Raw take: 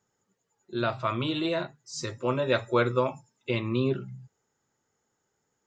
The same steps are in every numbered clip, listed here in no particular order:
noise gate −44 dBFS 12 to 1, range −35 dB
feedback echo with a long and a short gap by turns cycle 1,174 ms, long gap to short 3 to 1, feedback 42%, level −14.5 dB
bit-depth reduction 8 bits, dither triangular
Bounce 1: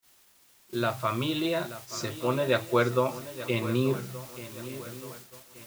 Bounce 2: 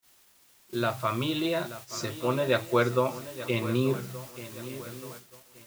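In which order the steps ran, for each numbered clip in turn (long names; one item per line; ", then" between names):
bit-depth reduction, then feedback echo with a long and a short gap by turns, then noise gate
feedback echo with a long and a short gap by turns, then bit-depth reduction, then noise gate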